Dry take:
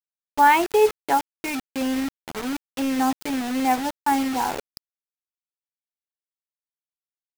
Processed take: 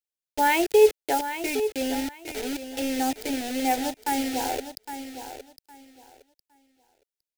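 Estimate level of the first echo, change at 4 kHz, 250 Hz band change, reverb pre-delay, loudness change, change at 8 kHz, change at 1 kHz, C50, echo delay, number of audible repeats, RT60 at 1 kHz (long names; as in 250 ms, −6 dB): −10.5 dB, +0.5 dB, −4.0 dB, no reverb audible, −2.5 dB, +1.5 dB, −6.0 dB, no reverb audible, 811 ms, 2, no reverb audible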